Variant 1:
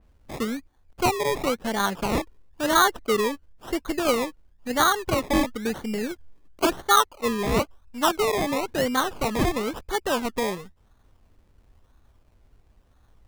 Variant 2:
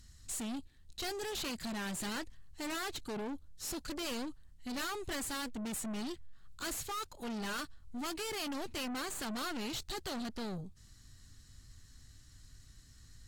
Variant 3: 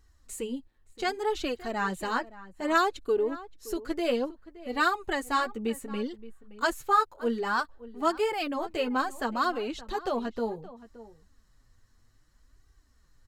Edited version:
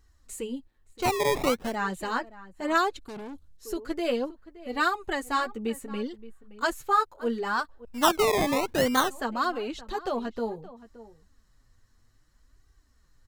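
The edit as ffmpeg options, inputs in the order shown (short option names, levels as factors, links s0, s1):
-filter_complex "[0:a]asplit=2[s0][s1];[2:a]asplit=4[s2][s3][s4][s5];[s2]atrim=end=1.14[s6];[s0]atrim=start=0.98:end=1.77[s7];[s3]atrim=start=1.61:end=3.082[s8];[1:a]atrim=start=3.078:end=3.572[s9];[s4]atrim=start=3.568:end=7.852[s10];[s1]atrim=start=7.848:end=9.102[s11];[s5]atrim=start=9.098[s12];[s6][s7]acrossfade=d=0.16:c1=tri:c2=tri[s13];[s13][s8]acrossfade=d=0.16:c1=tri:c2=tri[s14];[s14][s9]acrossfade=d=0.004:c1=hsin:c2=hsin[s15];[s15][s10]acrossfade=d=0.004:c1=hsin:c2=hsin[s16];[s16][s11]acrossfade=d=0.004:c1=hsin:c2=hsin[s17];[s17][s12]acrossfade=d=0.004:c1=hsin:c2=hsin"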